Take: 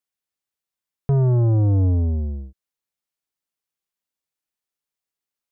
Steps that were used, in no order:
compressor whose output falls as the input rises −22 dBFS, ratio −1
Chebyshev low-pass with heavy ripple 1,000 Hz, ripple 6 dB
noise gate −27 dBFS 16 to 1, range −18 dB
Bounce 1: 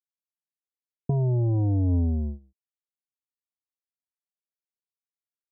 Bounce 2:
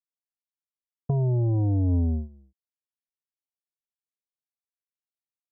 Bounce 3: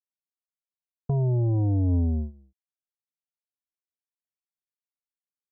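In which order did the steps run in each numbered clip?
noise gate, then Chebyshev low-pass with heavy ripple, then compressor whose output falls as the input rises
Chebyshev low-pass with heavy ripple, then noise gate, then compressor whose output falls as the input rises
Chebyshev low-pass with heavy ripple, then compressor whose output falls as the input rises, then noise gate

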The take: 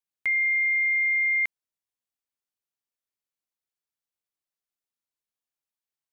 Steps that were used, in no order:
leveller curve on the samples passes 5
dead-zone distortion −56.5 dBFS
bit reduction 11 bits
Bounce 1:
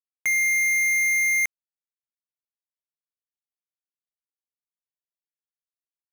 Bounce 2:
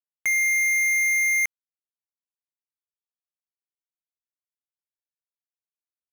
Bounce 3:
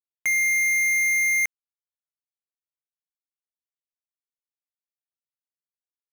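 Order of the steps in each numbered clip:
leveller curve on the samples, then dead-zone distortion, then bit reduction
dead-zone distortion, then bit reduction, then leveller curve on the samples
bit reduction, then leveller curve on the samples, then dead-zone distortion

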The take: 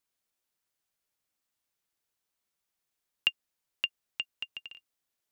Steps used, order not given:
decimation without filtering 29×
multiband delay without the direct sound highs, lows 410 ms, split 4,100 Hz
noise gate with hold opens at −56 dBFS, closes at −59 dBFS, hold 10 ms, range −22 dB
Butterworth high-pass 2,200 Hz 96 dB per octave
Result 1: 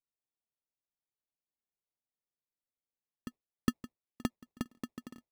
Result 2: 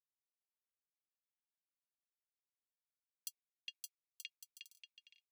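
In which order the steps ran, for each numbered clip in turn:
multiband delay without the direct sound, then noise gate with hold, then Butterworth high-pass, then decimation without filtering
decimation without filtering, then multiband delay without the direct sound, then noise gate with hold, then Butterworth high-pass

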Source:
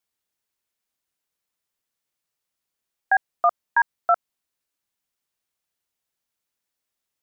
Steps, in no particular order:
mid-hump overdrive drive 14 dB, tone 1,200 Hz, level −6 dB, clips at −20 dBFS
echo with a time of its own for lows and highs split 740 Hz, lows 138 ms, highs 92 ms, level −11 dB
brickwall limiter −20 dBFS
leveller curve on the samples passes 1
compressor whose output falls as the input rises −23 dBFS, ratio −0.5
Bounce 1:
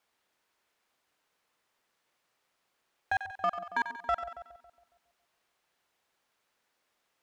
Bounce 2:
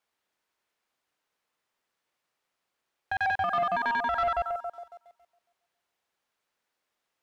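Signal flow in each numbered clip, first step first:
compressor whose output falls as the input rises, then leveller curve on the samples, then mid-hump overdrive, then echo with a time of its own for lows and highs, then brickwall limiter
echo with a time of its own for lows and highs, then compressor whose output falls as the input rises, then brickwall limiter, then mid-hump overdrive, then leveller curve on the samples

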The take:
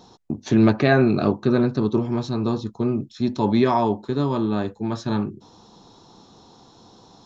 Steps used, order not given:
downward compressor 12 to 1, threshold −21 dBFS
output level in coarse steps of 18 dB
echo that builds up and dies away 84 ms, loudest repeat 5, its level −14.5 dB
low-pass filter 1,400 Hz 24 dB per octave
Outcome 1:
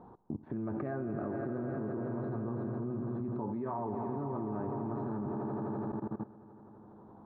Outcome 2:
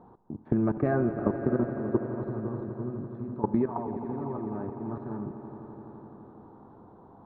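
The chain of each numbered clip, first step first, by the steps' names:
echo that builds up and dies away, then downward compressor, then low-pass filter, then output level in coarse steps
low-pass filter, then output level in coarse steps, then downward compressor, then echo that builds up and dies away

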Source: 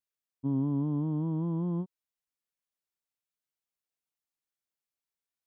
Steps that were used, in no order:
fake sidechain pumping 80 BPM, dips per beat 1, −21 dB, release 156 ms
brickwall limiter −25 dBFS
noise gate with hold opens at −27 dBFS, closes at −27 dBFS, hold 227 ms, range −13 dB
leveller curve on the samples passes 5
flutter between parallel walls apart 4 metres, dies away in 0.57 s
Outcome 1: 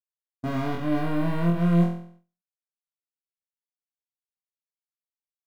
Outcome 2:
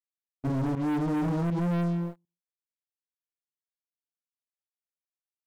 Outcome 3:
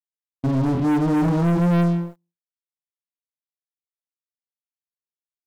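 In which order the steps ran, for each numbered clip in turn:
leveller curve on the samples, then brickwall limiter, then fake sidechain pumping, then flutter between parallel walls, then noise gate with hold
noise gate with hold, then flutter between parallel walls, then fake sidechain pumping, then leveller curve on the samples, then brickwall limiter
brickwall limiter, then fake sidechain pumping, then flutter between parallel walls, then leveller curve on the samples, then noise gate with hold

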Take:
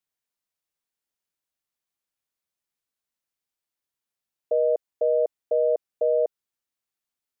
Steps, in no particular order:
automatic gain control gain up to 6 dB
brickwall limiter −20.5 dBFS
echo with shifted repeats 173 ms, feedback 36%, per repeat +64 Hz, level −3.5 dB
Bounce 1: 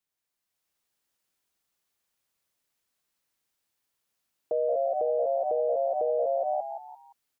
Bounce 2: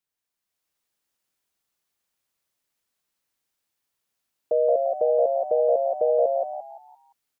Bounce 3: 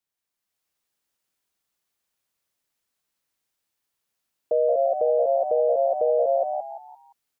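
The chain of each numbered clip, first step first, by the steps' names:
automatic gain control, then echo with shifted repeats, then brickwall limiter
brickwall limiter, then automatic gain control, then echo with shifted repeats
echo with shifted repeats, then brickwall limiter, then automatic gain control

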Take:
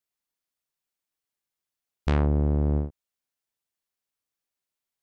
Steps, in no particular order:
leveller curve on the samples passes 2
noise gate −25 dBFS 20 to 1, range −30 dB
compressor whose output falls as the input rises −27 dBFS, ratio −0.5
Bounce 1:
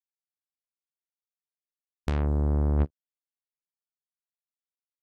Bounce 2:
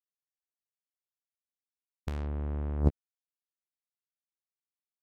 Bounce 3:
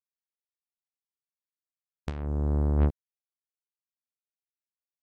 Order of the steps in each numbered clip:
noise gate, then compressor whose output falls as the input rises, then leveller curve on the samples
leveller curve on the samples, then noise gate, then compressor whose output falls as the input rises
compressor whose output falls as the input rises, then leveller curve on the samples, then noise gate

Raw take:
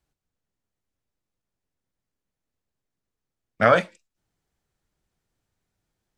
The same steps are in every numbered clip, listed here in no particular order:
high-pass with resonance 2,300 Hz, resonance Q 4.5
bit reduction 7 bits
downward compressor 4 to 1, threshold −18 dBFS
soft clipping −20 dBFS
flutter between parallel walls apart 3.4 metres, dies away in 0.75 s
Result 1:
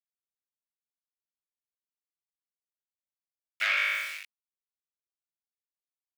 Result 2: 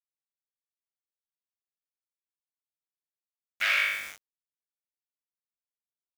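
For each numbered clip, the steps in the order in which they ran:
flutter between parallel walls, then bit reduction, then downward compressor, then soft clipping, then high-pass with resonance
downward compressor, then flutter between parallel walls, then soft clipping, then high-pass with resonance, then bit reduction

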